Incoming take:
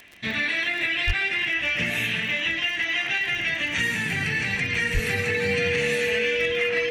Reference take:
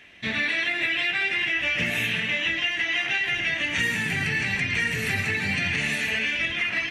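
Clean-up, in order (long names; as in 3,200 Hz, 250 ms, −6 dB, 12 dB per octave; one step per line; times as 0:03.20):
clipped peaks rebuilt −15 dBFS
click removal
notch filter 480 Hz, Q 30
0:01.06–0:01.18: high-pass filter 140 Hz 24 dB per octave
0:04.93–0:05.05: high-pass filter 140 Hz 24 dB per octave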